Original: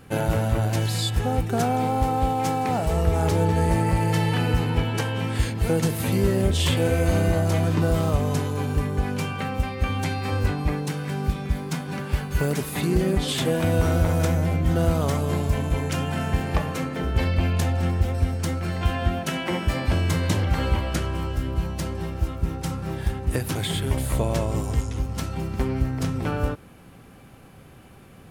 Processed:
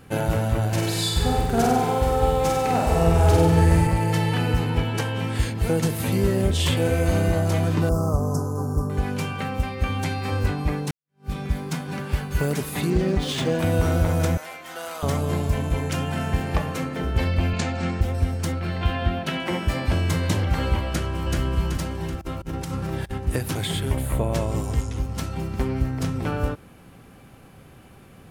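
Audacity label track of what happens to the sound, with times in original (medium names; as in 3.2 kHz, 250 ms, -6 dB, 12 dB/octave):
0.680000	3.870000	flutter echo walls apart 8.2 m, dies away in 1.1 s
7.890000	8.900000	elliptic band-stop 1.3–5.3 kHz
10.910000	11.320000	fade in exponential
12.900000	13.590000	decimation joined by straight lines rate divided by 3×
14.370000	15.030000	high-pass 950 Hz
17.530000	18.010000	cabinet simulation 120–7800 Hz, peaks and dips at 210 Hz +5 dB, 1.4 kHz +4 dB, 2.3 kHz +6 dB, 4.3 kHz +5 dB, 7.2 kHz +4 dB
18.520000	19.400000	resonant high shelf 5.1 kHz -7 dB, Q 1.5
20.880000	21.390000	echo throw 380 ms, feedback 50%, level -2 dB
22.210000	23.180000	compressor with a negative ratio -29 dBFS, ratio -0.5
23.910000	24.320000	peaking EQ 5.3 kHz -6 dB -> -14 dB 1.1 oct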